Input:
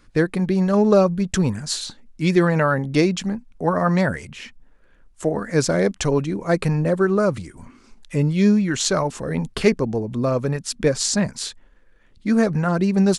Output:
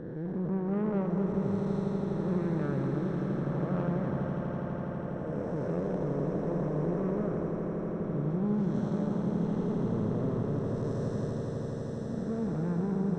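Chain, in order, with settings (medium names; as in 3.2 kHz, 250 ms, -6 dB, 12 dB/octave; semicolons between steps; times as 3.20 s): spectral blur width 529 ms; boxcar filter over 19 samples; valve stage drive 22 dB, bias 0.45; on a send: echo with a slow build-up 82 ms, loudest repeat 8, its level -10 dB; on the sum: trim -5.5 dB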